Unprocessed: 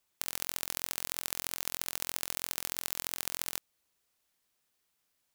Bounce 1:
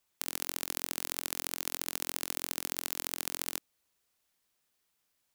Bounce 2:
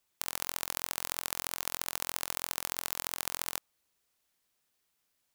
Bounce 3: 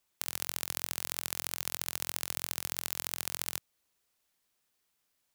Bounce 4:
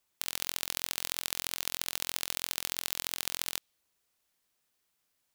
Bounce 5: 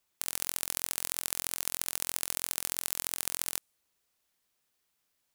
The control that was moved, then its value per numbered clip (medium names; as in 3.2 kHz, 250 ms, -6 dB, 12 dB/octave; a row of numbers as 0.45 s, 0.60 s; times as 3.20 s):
dynamic bell, frequency: 300 Hz, 1 kHz, 110 Hz, 3.5 kHz, 9.7 kHz